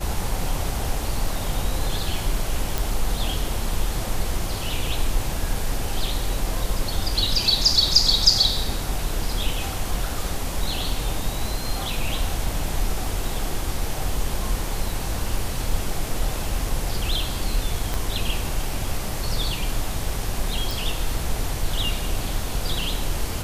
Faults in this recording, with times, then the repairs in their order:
2.78 pop
17.94 pop
20.71 pop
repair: de-click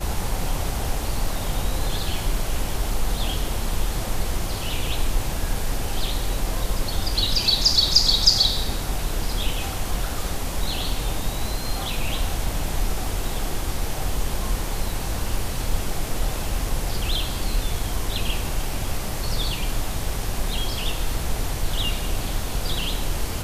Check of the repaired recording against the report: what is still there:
17.94 pop

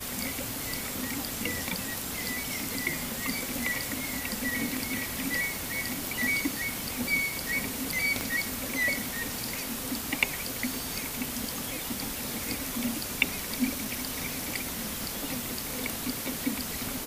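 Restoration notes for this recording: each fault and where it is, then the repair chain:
8.21 pop -14 dBFS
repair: de-click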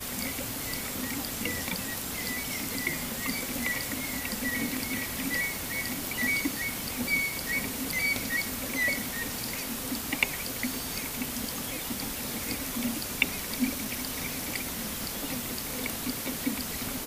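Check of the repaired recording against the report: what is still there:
none

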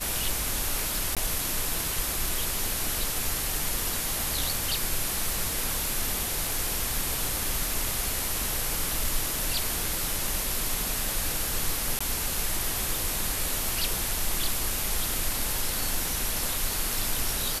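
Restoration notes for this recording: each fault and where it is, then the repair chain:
1.15–1.17 gap 17 ms
11.99–12.01 gap 15 ms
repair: interpolate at 1.15, 17 ms; interpolate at 11.99, 15 ms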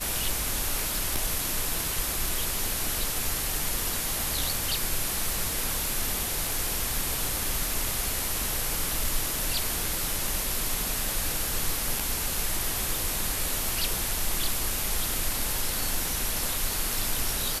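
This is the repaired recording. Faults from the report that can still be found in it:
none

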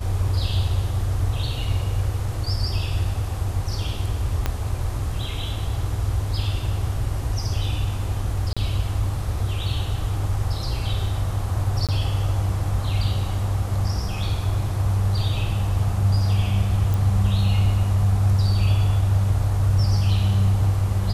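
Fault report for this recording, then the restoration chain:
4.46 pop -9 dBFS
8.53–8.57 gap 36 ms
11.87–11.89 gap 17 ms
16.94 pop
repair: de-click; interpolate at 8.53, 36 ms; interpolate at 11.87, 17 ms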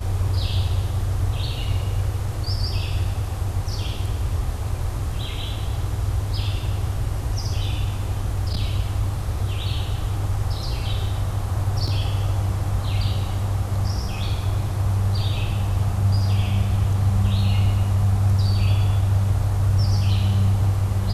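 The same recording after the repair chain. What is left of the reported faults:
4.46 pop

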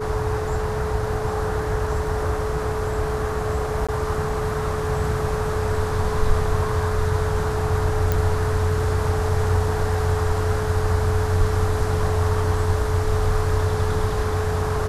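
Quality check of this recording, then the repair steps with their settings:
tone 430 Hz -26 dBFS
3.87–3.89 gap 16 ms
8.12 pop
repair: de-click; notch 430 Hz, Q 30; interpolate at 3.87, 16 ms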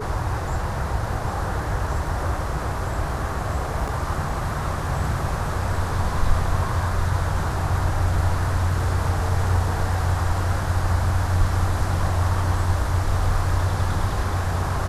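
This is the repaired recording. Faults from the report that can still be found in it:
none

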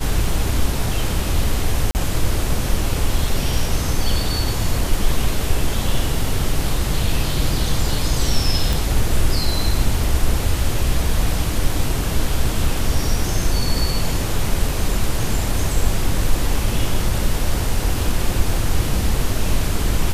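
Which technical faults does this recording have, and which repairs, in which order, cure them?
1.91–1.95 gap 39 ms
8.73 pop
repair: de-click; interpolate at 1.91, 39 ms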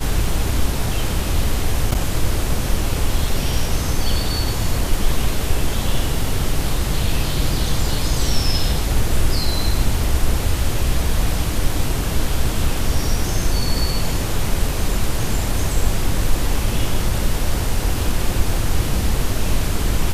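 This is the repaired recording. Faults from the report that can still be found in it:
none

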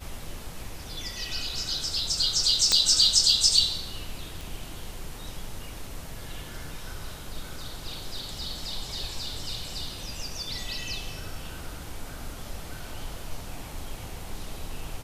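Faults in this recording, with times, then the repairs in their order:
2.72 pop -6 dBFS
4.41 pop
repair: de-click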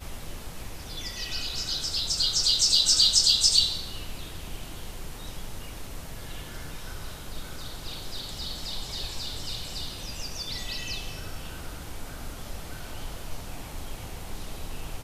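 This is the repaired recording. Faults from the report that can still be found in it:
none

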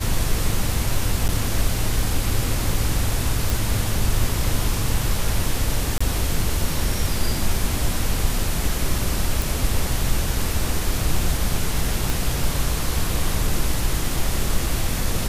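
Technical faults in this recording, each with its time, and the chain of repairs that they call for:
1.28–1.29 gap 9.5 ms
3.5 pop
5.98–6 gap 25 ms
9.42 pop
12.1 pop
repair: de-click; interpolate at 1.28, 9.5 ms; interpolate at 5.98, 25 ms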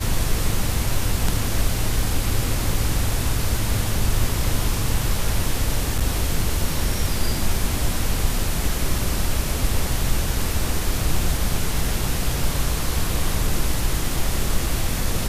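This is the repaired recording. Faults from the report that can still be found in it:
12.1 pop

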